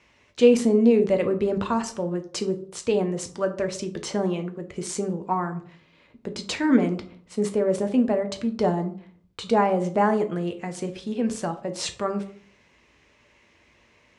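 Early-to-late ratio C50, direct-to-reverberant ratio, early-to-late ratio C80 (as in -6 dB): 13.5 dB, 6.5 dB, 17.5 dB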